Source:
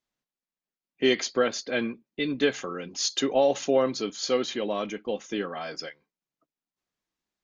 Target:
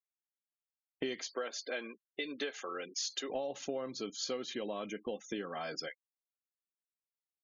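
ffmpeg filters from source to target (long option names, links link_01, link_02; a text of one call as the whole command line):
ffmpeg -i in.wav -filter_complex "[0:a]asettb=1/sr,asplit=3[link_01][link_02][link_03];[link_01]atrim=end=1.224[link_04];[link_02]atrim=start=1.22:end=3.3,asetpts=PTS-STARTPTS,afade=type=in:duration=0.004:curve=qsin,afade=type=out:start_time=2.076:duration=0.004:curve=qsin,highpass=440[link_05];[link_03]atrim=start=3.296[link_06];[link_04][link_05]acrossfade=duration=0.004:curve1=hsin:curve2=qsin[link_07];[link_07][link_06]acrossfade=duration=0.004:curve1=qsin:curve2=hsin,agate=range=-7dB:threshold=-48dB:ratio=16:detection=peak,afftfilt=real='re*gte(hypot(re,im),0.00631)':imag='im*gte(hypot(re,im),0.00631)':win_size=1024:overlap=0.75,acompressor=threshold=-37dB:ratio=6,volume=1dB" out.wav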